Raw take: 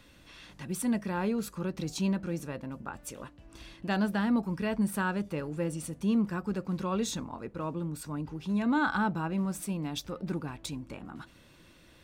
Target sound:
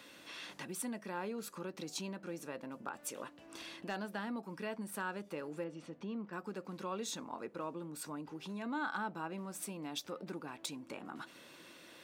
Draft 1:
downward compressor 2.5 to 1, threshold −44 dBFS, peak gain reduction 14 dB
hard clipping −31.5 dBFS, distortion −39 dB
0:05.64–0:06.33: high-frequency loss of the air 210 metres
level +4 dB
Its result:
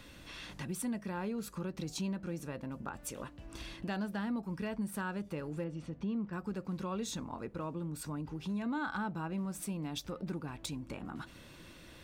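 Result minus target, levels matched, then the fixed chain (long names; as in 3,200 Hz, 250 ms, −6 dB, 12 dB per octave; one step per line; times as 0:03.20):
250 Hz band +2.5 dB
downward compressor 2.5 to 1, threshold −44 dBFS, peak gain reduction 14 dB
high-pass filter 300 Hz 12 dB per octave
hard clipping −31.5 dBFS, distortion −33 dB
0:05.64–0:06.33: high-frequency loss of the air 210 metres
level +4 dB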